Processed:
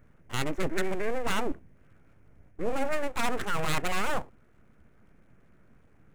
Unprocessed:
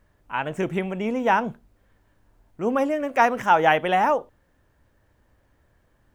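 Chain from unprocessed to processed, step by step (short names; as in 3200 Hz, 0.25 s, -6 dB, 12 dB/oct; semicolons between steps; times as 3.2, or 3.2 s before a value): Wiener smoothing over 9 samples; formant shift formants -4 st; in parallel at -2.5 dB: limiter -15.5 dBFS, peak gain reduction 9.5 dB; on the sum: graphic EQ 125/1000/2000 Hz +9/-9/+11 dB; reverse; compressor, threshold -21 dBFS, peak gain reduction 9.5 dB; reverse; full-wave rectifier; resonant high shelf 6200 Hz +7 dB, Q 1.5; gain -1.5 dB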